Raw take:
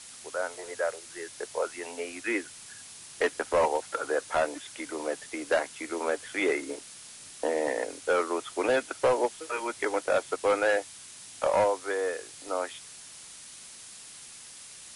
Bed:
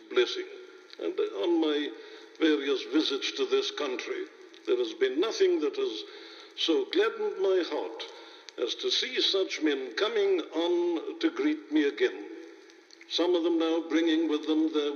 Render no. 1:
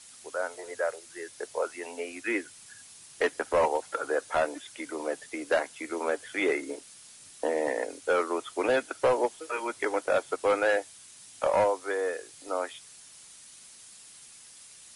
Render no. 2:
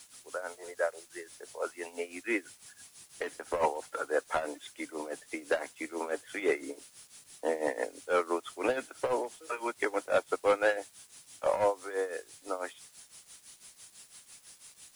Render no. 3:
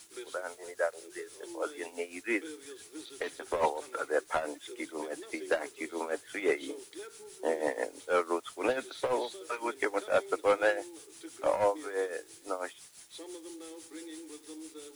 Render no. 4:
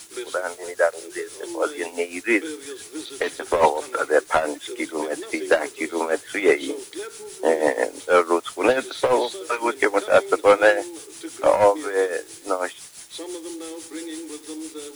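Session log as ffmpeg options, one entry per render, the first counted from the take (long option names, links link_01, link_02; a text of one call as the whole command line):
ffmpeg -i in.wav -af "afftdn=noise_reduction=6:noise_floor=-47" out.wav
ffmpeg -i in.wav -af "tremolo=f=6:d=0.78,acrusher=bits=9:mix=0:aa=0.000001" out.wav
ffmpeg -i in.wav -i bed.wav -filter_complex "[1:a]volume=-20dB[link_01];[0:a][link_01]amix=inputs=2:normalize=0" out.wav
ffmpeg -i in.wav -af "volume=11.5dB" out.wav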